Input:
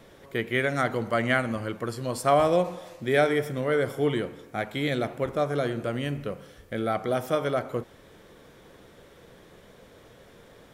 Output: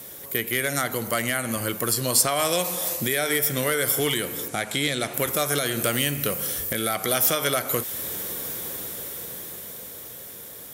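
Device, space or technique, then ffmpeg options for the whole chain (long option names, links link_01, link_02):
FM broadcast chain: -filter_complex "[0:a]highpass=62,dynaudnorm=framelen=400:gausssize=11:maxgain=11.5dB,acrossover=split=1400|6400[link_01][link_02][link_03];[link_01]acompressor=threshold=-27dB:ratio=4[link_04];[link_02]acompressor=threshold=-28dB:ratio=4[link_05];[link_03]acompressor=threshold=-51dB:ratio=4[link_06];[link_04][link_05][link_06]amix=inputs=3:normalize=0,aemphasis=mode=production:type=50fm,alimiter=limit=-16.5dB:level=0:latency=1:release=236,asoftclip=type=hard:threshold=-19.5dB,lowpass=frequency=15000:width=0.5412,lowpass=frequency=15000:width=1.3066,aemphasis=mode=production:type=50fm,asettb=1/sr,asplit=3[link_07][link_08][link_09];[link_07]atrim=end=4.484[link_10];[link_08]atrim=start=4.48:end=5.14,asetpts=PTS-STARTPTS,afade=type=in:duration=0.004:curve=qsin,afade=type=out:start_time=0.656:duration=0.004:curve=qsin,lowpass=frequency=9600:width=0.5412,lowpass=frequency=9600:width=1.3066[link_11];[link_09]atrim=start=5.136[link_12];[link_10][link_11]acrossfade=duration=0.004:curve1=hsin:curve2=qsin[link_13];[link_13][link_12]acrossfade=duration=0.004:curve1=qsin:curve2=hsin,volume=3.5dB"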